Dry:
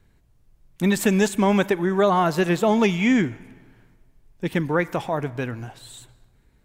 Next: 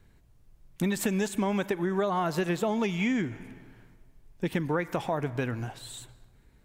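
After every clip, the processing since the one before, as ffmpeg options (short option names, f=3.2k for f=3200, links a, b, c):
-af "acompressor=threshold=-25dB:ratio=6"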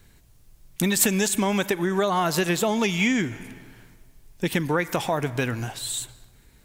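-af "highshelf=f=2.8k:g=12,volume=4dB"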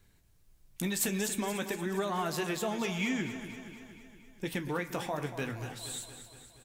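-filter_complex "[0:a]flanger=delay=9.8:depth=6.9:regen=-51:speed=0.52:shape=triangular,asplit=2[a][b];[b]aecho=0:1:235|470|705|940|1175|1410|1645:0.282|0.169|0.101|0.0609|0.0365|0.0219|0.0131[c];[a][c]amix=inputs=2:normalize=0,volume=-6.5dB"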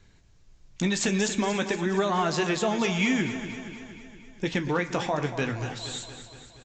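-af "aresample=16000,aresample=44100,volume=7.5dB"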